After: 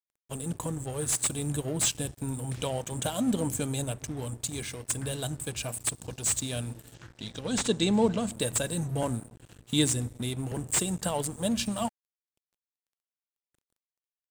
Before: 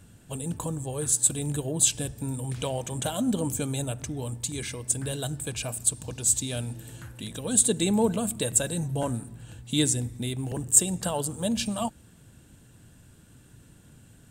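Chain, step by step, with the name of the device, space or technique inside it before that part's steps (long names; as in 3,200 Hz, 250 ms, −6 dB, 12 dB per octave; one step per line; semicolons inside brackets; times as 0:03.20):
early transistor amplifier (dead-zone distortion −43.5 dBFS; slew-rate limiting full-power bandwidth 510 Hz)
0:06.94–0:08.32: high shelf with overshoot 8,000 Hz −13.5 dB, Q 1.5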